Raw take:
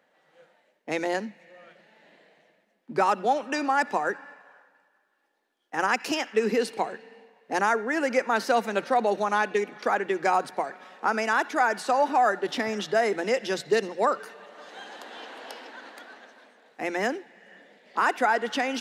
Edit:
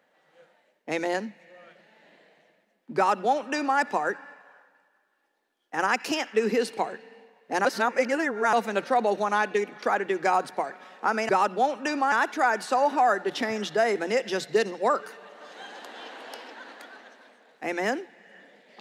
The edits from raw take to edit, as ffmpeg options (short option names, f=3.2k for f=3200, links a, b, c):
-filter_complex "[0:a]asplit=5[a][b][c][d][e];[a]atrim=end=7.652[f];[b]atrim=start=7.648:end=8.532,asetpts=PTS-STARTPTS,areverse[g];[c]atrim=start=8.528:end=11.292[h];[d]atrim=start=2.958:end=3.792[i];[e]atrim=start=11.288[j];[f][g]acrossfade=d=0.004:c1=hsin:c2=hsin[k];[k][h]acrossfade=d=0.004:c1=hsin:c2=hsin[l];[l][i]acrossfade=d=0.004:c1=hsin:c2=hsin[m];[m][j]acrossfade=d=0.004:c1=hsin:c2=hsin"